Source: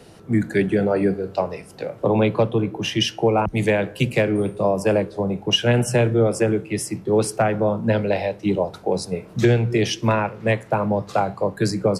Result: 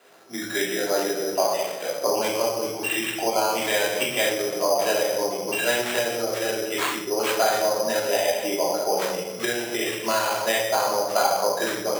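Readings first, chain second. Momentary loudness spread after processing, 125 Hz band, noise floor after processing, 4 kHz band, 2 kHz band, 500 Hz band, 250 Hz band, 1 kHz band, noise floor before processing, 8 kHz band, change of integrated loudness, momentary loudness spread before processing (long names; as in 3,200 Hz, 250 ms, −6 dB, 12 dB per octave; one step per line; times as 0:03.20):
5 LU, −22.0 dB, −33 dBFS, −0.5 dB, +1.5 dB, −2.5 dB, −10.0 dB, +1.0 dB, −44 dBFS, +6.0 dB, −2.5 dB, 6 LU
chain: automatic gain control
linear-phase brick-wall band-stop 2,800–6,600 Hz
high-shelf EQ 9,000 Hz +8 dB
rectangular room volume 380 cubic metres, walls mixed, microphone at 3 metres
downward compressor, threshold −5 dBFS, peak gain reduction 8 dB
decimation without filtering 8×
high-pass filter 620 Hz 12 dB per octave
level −8 dB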